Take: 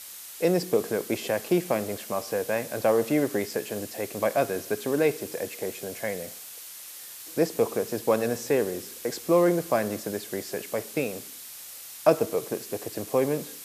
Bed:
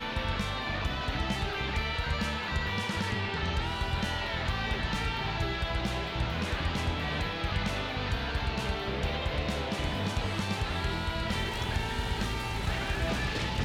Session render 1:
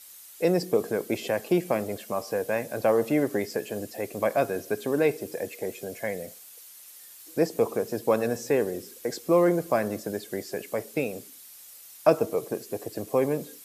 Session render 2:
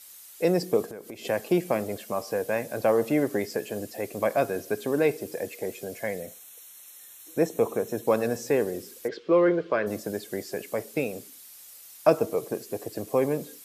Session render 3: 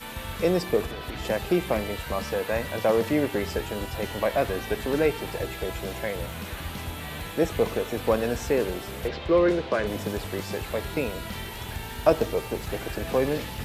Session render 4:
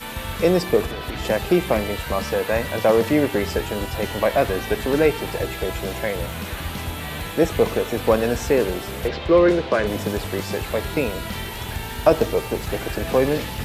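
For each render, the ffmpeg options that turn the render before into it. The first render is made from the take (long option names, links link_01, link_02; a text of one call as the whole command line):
ffmpeg -i in.wav -af "afftdn=noise_reduction=9:noise_floor=-43" out.wav
ffmpeg -i in.wav -filter_complex "[0:a]asettb=1/sr,asplit=3[link_01][link_02][link_03];[link_01]atrim=end=0.854[link_04];[link_02]atrim=start=0.85:end=1.25,asetpts=PTS-STARTPTS,afade=type=in:duration=0.004:curve=qsin,afade=type=out:start_time=0.396:duration=0.004:curve=qsin,acompressor=threshold=-38dB:ratio=4:attack=3.2:release=140:knee=1:detection=peak[link_05];[link_03]atrim=start=1.246[link_06];[link_04][link_05]acrossfade=duration=0.004:curve1=hsin:curve2=qsin[link_07];[link_07][link_06]acrossfade=duration=0.004:curve1=qsin:curve2=hsin,asettb=1/sr,asplit=3[link_08][link_09][link_10];[link_08]atrim=end=6.204[link_11];[link_09]atrim=start=6.2:end=8.07,asetpts=PTS-STARTPTS,afade=type=in:duration=0.004:curve=qsin,afade=type=out:start_time=1.866:duration=0.004:curve=qsin,asuperstop=centerf=4800:order=12:qfactor=4.9[link_12];[link_10]atrim=start=8.066[link_13];[link_11][link_12]acrossfade=duration=0.004:curve1=hsin:curve2=qsin[link_14];[link_14][link_13]acrossfade=duration=0.004:curve1=qsin:curve2=hsin,asplit=3[link_15][link_16][link_17];[link_15]afade=type=out:start_time=9.07:duration=0.02[link_18];[link_16]highpass=120,equalizer=frequency=140:width_type=q:width=4:gain=-10,equalizer=frequency=240:width_type=q:width=4:gain=-7,equalizer=frequency=430:width_type=q:width=4:gain=6,equalizer=frequency=760:width_type=q:width=4:gain=-10,equalizer=frequency=1500:width_type=q:width=4:gain=5,equalizer=frequency=3100:width_type=q:width=4:gain=5,lowpass=frequency=4000:width=0.5412,lowpass=frequency=4000:width=1.3066,afade=type=in:start_time=9.07:duration=0.02,afade=type=out:start_time=9.86:duration=0.02[link_19];[link_17]afade=type=in:start_time=9.86:duration=0.02[link_20];[link_18][link_19][link_20]amix=inputs=3:normalize=0" out.wav
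ffmpeg -i in.wav -i bed.wav -filter_complex "[1:a]volume=-4dB[link_01];[0:a][link_01]amix=inputs=2:normalize=0" out.wav
ffmpeg -i in.wav -af "volume=5.5dB,alimiter=limit=-2dB:level=0:latency=1" out.wav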